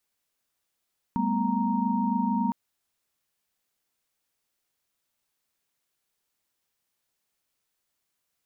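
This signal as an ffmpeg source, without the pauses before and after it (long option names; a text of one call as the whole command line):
ffmpeg -f lavfi -i "aevalsrc='0.0376*(sin(2*PI*196*t)+sin(2*PI*220*t)+sin(2*PI*246.94*t)+sin(2*PI*932.33*t))':duration=1.36:sample_rate=44100" out.wav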